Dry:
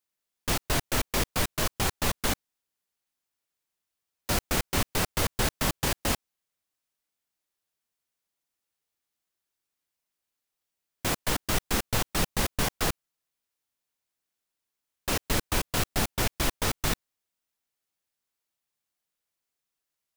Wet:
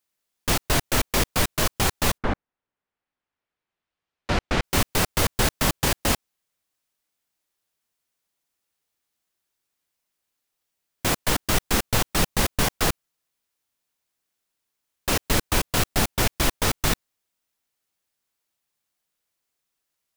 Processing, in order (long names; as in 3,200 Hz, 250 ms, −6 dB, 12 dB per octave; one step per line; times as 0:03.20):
0:02.17–0:04.62: low-pass filter 1,500 Hz → 3,800 Hz 12 dB per octave
level +5 dB